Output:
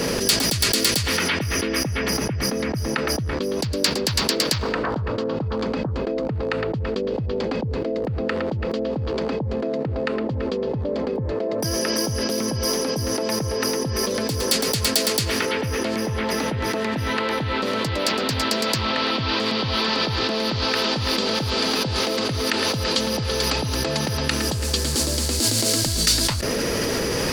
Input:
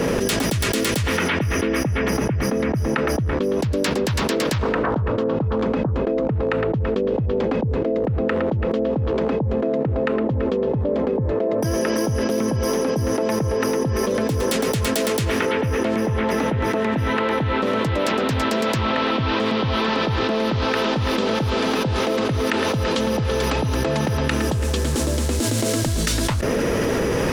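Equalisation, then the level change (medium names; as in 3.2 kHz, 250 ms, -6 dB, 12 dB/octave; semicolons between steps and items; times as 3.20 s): treble shelf 2.8 kHz +10 dB; peaking EQ 4.6 kHz +10 dB 0.27 oct; -4.0 dB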